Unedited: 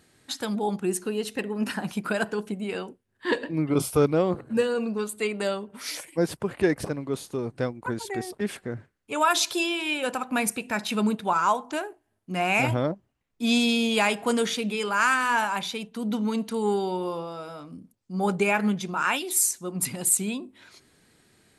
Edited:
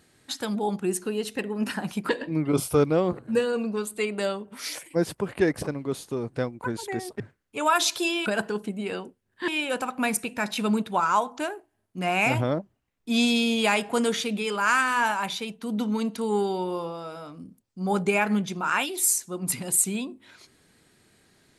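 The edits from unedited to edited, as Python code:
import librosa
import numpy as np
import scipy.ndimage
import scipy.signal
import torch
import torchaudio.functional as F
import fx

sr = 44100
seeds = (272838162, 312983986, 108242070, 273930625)

y = fx.edit(x, sr, fx.move(start_s=2.09, length_s=1.22, to_s=9.81),
    fx.cut(start_s=8.42, length_s=0.33), tone=tone)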